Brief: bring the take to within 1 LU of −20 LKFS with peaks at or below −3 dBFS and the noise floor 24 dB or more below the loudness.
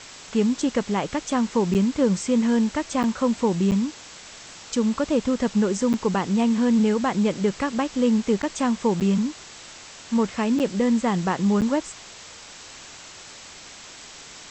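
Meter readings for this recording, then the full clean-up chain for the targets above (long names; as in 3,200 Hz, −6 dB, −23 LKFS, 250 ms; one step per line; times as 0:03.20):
number of dropouts 8; longest dropout 8.6 ms; background noise floor −43 dBFS; target noise floor −47 dBFS; integrated loudness −23.0 LKFS; sample peak −9.0 dBFS; target loudness −20.0 LKFS
→ repair the gap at 0:01.74/0:03.03/0:03.71/0:05.93/0:08.42/0:09.00/0:10.59/0:11.61, 8.6 ms
broadband denoise 6 dB, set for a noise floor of −43 dBFS
level +3 dB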